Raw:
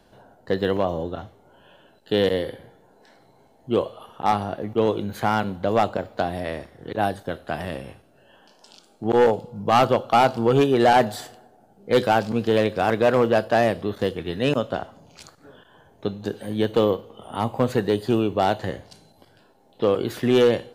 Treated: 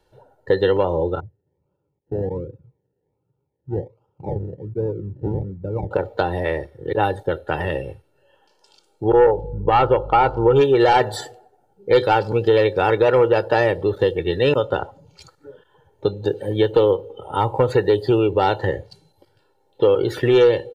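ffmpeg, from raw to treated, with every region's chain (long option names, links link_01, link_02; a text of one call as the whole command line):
ffmpeg -i in.wav -filter_complex "[0:a]asettb=1/sr,asplit=3[link_01][link_02][link_03];[link_01]atrim=end=1.204[link_04];[link_02]atrim=start=1.2:end=5.91,asetpts=PTS-STARTPTS,afade=type=in:duration=0.004:curve=qsin,afade=type=out:start_time=4.706:duration=0.004:curve=qsin,acrusher=samples=30:mix=1:aa=0.000001:lfo=1:lforange=18:lforate=1.3,tremolo=f=260:d=0.333,bandpass=frequency=140:width_type=q:width=1.3[link_05];[link_03]atrim=start=5.906[link_06];[link_04][link_05]acrossfade=duration=0.004:curve1=hsin:curve2=qsin[link_07];[link_07][link_06]acrossfade=duration=0.004:curve1=qsin:curve2=hsin,asettb=1/sr,asplit=3[link_08][link_09][link_10];[link_08]atrim=end=9.104[link_11];[link_09]atrim=start=9.1:end=10.56,asetpts=PTS-STARTPTS,afade=type=in:duration=0.004:curve=qsin,afade=type=out:start_time=1.456:duration=0.004:curve=qsin,aemphasis=mode=reproduction:type=75kf,aeval=exprs='val(0)+0.0112*(sin(2*PI*50*n/s)+sin(2*PI*2*50*n/s)/2+sin(2*PI*3*50*n/s)/3+sin(2*PI*4*50*n/s)/4+sin(2*PI*5*50*n/s)/5)':channel_layout=same[link_12];[link_10]atrim=start=10.556[link_13];[link_11][link_12]acrossfade=duration=0.004:curve1=hsin:curve2=qsin[link_14];[link_14][link_13]acrossfade=duration=0.004:curve1=qsin:curve2=hsin,afftdn=noise_reduction=15:noise_floor=-40,aecho=1:1:2.2:0.8,acompressor=threshold=-22dB:ratio=2,volume=6dB" out.wav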